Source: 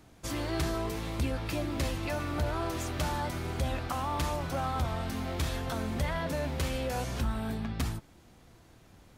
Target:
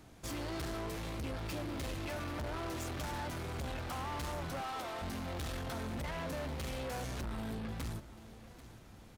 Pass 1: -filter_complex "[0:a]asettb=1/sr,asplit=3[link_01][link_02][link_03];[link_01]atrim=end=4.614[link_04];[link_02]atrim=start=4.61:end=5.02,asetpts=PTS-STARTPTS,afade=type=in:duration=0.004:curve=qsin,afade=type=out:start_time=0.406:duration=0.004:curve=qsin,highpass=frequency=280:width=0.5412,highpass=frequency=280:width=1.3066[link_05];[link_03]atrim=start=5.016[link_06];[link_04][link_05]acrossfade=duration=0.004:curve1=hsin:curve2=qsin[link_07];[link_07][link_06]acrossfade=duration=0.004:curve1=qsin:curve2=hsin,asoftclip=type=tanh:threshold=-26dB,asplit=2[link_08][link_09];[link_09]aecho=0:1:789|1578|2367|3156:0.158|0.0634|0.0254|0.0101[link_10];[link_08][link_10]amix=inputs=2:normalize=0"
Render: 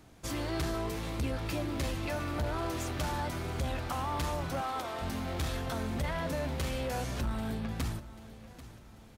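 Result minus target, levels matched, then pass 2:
soft clipping: distortion −10 dB
-filter_complex "[0:a]asettb=1/sr,asplit=3[link_01][link_02][link_03];[link_01]atrim=end=4.614[link_04];[link_02]atrim=start=4.61:end=5.02,asetpts=PTS-STARTPTS,afade=type=in:duration=0.004:curve=qsin,afade=type=out:start_time=0.406:duration=0.004:curve=qsin,highpass=frequency=280:width=0.5412,highpass=frequency=280:width=1.3066[link_05];[link_03]atrim=start=5.016[link_06];[link_04][link_05]acrossfade=duration=0.004:curve1=hsin:curve2=qsin[link_07];[link_07][link_06]acrossfade=duration=0.004:curve1=qsin:curve2=hsin,asoftclip=type=tanh:threshold=-37dB,asplit=2[link_08][link_09];[link_09]aecho=0:1:789|1578|2367|3156:0.158|0.0634|0.0254|0.0101[link_10];[link_08][link_10]amix=inputs=2:normalize=0"

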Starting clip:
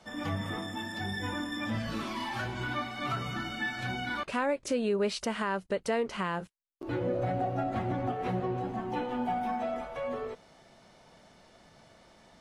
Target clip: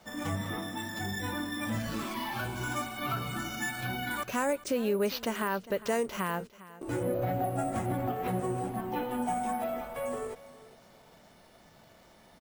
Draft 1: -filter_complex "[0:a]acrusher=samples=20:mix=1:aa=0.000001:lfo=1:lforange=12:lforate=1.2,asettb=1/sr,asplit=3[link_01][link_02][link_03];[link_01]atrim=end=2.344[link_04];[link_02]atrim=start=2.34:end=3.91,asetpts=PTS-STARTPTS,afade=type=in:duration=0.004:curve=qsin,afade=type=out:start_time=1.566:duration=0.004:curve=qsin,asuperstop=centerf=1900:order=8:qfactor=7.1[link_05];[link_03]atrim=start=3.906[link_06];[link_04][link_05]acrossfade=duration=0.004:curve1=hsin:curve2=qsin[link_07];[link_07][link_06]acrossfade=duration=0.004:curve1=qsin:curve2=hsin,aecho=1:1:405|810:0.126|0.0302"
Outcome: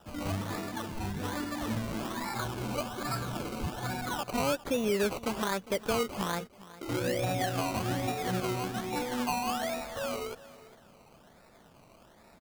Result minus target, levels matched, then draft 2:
sample-and-hold swept by an LFO: distortion +14 dB
-filter_complex "[0:a]acrusher=samples=4:mix=1:aa=0.000001:lfo=1:lforange=2.4:lforate=1.2,asettb=1/sr,asplit=3[link_01][link_02][link_03];[link_01]atrim=end=2.344[link_04];[link_02]atrim=start=2.34:end=3.91,asetpts=PTS-STARTPTS,afade=type=in:duration=0.004:curve=qsin,afade=type=out:start_time=1.566:duration=0.004:curve=qsin,asuperstop=centerf=1900:order=8:qfactor=7.1[link_05];[link_03]atrim=start=3.906[link_06];[link_04][link_05]acrossfade=duration=0.004:curve1=hsin:curve2=qsin[link_07];[link_07][link_06]acrossfade=duration=0.004:curve1=qsin:curve2=hsin,aecho=1:1:405|810:0.126|0.0302"

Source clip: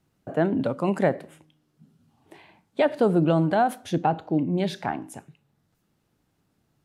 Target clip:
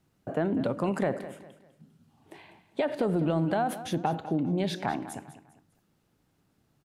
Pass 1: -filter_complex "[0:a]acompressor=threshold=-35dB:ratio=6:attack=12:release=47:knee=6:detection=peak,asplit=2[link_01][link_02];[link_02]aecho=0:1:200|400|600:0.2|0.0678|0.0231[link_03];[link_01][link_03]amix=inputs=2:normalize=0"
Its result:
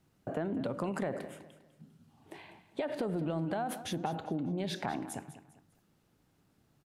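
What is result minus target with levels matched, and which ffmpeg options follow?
downward compressor: peak gain reduction +7.5 dB
-filter_complex "[0:a]acompressor=threshold=-26dB:ratio=6:attack=12:release=47:knee=6:detection=peak,asplit=2[link_01][link_02];[link_02]aecho=0:1:200|400|600:0.2|0.0678|0.0231[link_03];[link_01][link_03]amix=inputs=2:normalize=0"

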